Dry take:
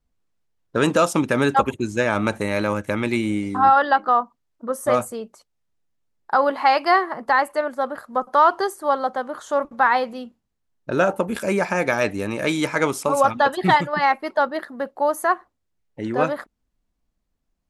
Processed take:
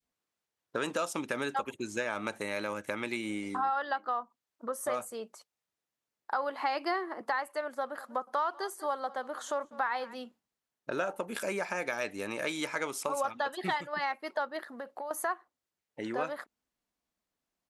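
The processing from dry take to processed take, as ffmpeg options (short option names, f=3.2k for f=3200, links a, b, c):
-filter_complex "[0:a]asettb=1/sr,asplit=3[a][b][c];[a]atrim=end=6.624[d];[b]atrim=start=6.62:end=7.21,asetpts=PTS-STARTPTS,afade=t=in:d=0.004:c=qsin,afade=t=out:st=0.586:d=0.004:c=qsin,highpass=f=310:t=q:w=3.2[e];[c]atrim=start=7.206[f];[d][e]acrossfade=d=0.004:c1=hsin:c2=qsin[g];[g][f]acrossfade=d=0.004:c1=qsin:c2=hsin,asplit=3[h][i][j];[h]afade=t=out:st=7.86:d=0.02[k];[i]aecho=1:1:195:0.075,afade=t=in:st=7.86:d=0.02,afade=t=out:st=10.14:d=0.02[l];[j]afade=t=in:st=10.14:d=0.02[m];[k][l][m]amix=inputs=3:normalize=0,asettb=1/sr,asplit=3[n][o][p];[n]atrim=end=14.624[q];[o]atrim=start=14.62:end=15.11,asetpts=PTS-STARTPTS,afade=t=in:d=0.004:c=qsin,afade=t=out:st=0.486:d=0.004:c=qsin,acompressor=threshold=-32dB:ratio=6:attack=3.2:release=140:knee=1:detection=peak[r];[p]atrim=start=15.106[s];[q][r]acrossfade=d=0.004:c1=hsin:c2=qsin[t];[t][s]acrossfade=d=0.004:c1=qsin:c2=hsin,highpass=f=570:p=1,adynamicequalizer=threshold=0.0251:dfrequency=1000:dqfactor=0.87:tfrequency=1000:tqfactor=0.87:attack=5:release=100:ratio=0.375:range=2:mode=cutabove:tftype=bell,acompressor=threshold=-32dB:ratio=2.5,volume=-1.5dB"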